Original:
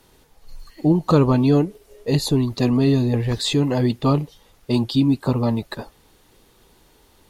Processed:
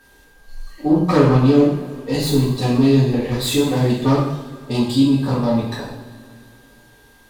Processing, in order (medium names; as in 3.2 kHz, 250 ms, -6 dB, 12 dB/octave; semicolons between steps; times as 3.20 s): self-modulated delay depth 0.16 ms; two-slope reverb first 0.65 s, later 2.8 s, from -18 dB, DRR -8 dB; whistle 1.6 kHz -47 dBFS; trim -5.5 dB